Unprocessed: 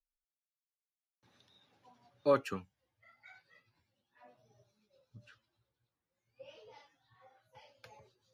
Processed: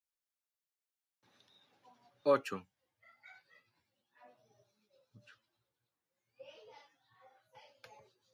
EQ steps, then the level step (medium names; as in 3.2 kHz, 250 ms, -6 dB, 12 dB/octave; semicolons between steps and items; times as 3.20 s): high-pass 220 Hz 6 dB/octave; 0.0 dB